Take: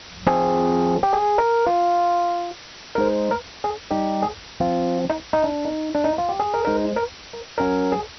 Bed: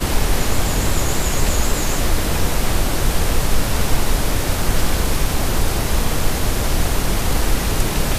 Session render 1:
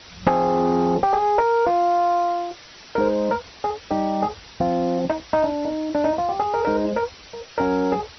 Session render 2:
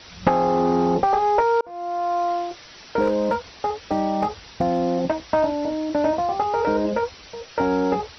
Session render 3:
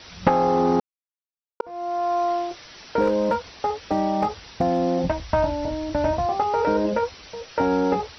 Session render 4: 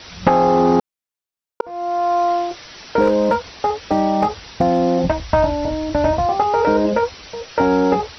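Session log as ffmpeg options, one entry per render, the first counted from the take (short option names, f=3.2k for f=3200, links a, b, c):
-af "afftdn=nr=6:nf=-42"
-filter_complex "[0:a]asettb=1/sr,asplit=3[a][b][c];[a]atrim=end=3.014[d];[b]atrim=start=3.01:end=4.8,asetpts=PTS-STARTPTS,afade=t=in:d=0.004:c=qsin,afade=t=out:st=1.786:d=0.004:c=qsin,volume=14dB,asoftclip=hard,volume=-14dB[e];[c]atrim=start=4.796[f];[d][e]acrossfade=d=0.004:c1=hsin:c2=qsin[g];[g][f]acrossfade=d=0.004:c1=qsin:c2=hsin,asplit=2[h][i];[h]atrim=end=1.61,asetpts=PTS-STARTPTS,afade=t=out:st=1.606:d=0.004:c=hsin[j];[i]atrim=start=1.61,asetpts=PTS-STARTPTS,afade=t=in:d=0.74[k];[j][k]concat=n=2:v=0:a=1"
-filter_complex "[0:a]asplit=3[a][b][c];[a]afade=t=out:st=5.02:d=0.02[d];[b]asubboost=boost=7.5:cutoff=110,afade=t=in:st=5.02:d=0.02,afade=t=out:st=6.25:d=0.02[e];[c]afade=t=in:st=6.25:d=0.02[f];[d][e][f]amix=inputs=3:normalize=0,asplit=3[g][h][i];[g]atrim=end=0.8,asetpts=PTS-STARTPTS,afade=t=out:st=0.796:d=0.004:c=hsin[j];[h]atrim=start=0.8:end=1.6,asetpts=PTS-STARTPTS,volume=0[k];[i]atrim=start=1.6,asetpts=PTS-STARTPTS,afade=t=in:d=0.004:c=hsin[l];[j][k][l]concat=n=3:v=0:a=1"
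-af "volume=5.5dB,alimiter=limit=-2dB:level=0:latency=1"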